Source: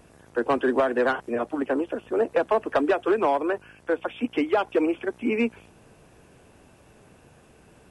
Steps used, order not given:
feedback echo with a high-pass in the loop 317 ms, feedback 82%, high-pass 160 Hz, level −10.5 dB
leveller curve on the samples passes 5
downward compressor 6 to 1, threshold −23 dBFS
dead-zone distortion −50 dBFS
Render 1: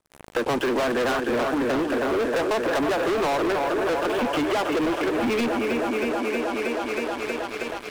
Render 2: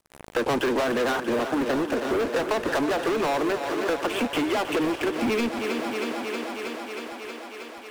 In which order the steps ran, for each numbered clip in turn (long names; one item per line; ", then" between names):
dead-zone distortion, then feedback echo with a high-pass in the loop, then leveller curve on the samples, then downward compressor
dead-zone distortion, then leveller curve on the samples, then feedback echo with a high-pass in the loop, then downward compressor